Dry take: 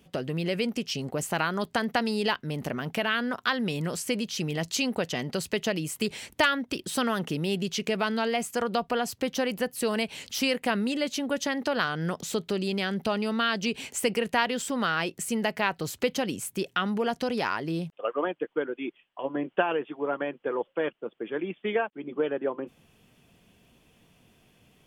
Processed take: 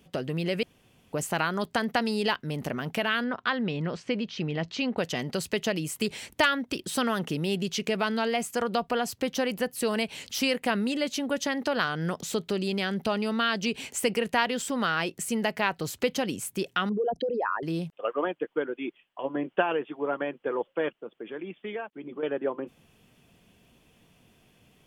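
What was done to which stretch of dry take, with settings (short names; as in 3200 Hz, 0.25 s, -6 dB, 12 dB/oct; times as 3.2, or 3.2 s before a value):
0.63–1.13 room tone
3.24–4.98 Bessel low-pass 3100 Hz, order 4
16.89–17.63 formant sharpening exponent 3
21.01–22.23 compressor 2:1, threshold -37 dBFS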